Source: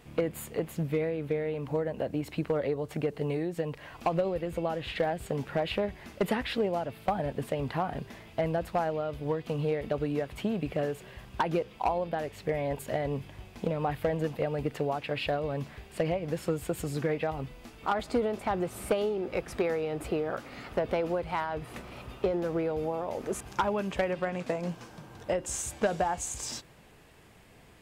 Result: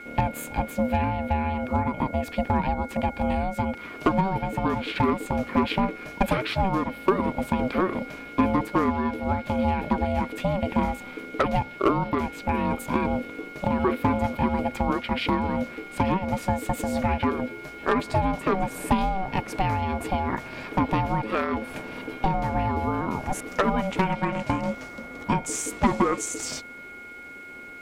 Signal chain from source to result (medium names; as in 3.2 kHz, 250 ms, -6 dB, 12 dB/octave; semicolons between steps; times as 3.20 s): whistle 1.8 kHz -44 dBFS; ring modulator 380 Hz; small resonant body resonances 260/370/2400 Hz, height 7 dB, ringing for 35 ms; trim +7 dB